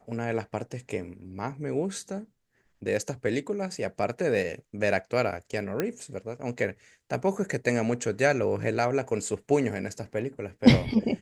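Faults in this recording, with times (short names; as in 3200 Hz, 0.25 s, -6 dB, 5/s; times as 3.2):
5.8 pop -13 dBFS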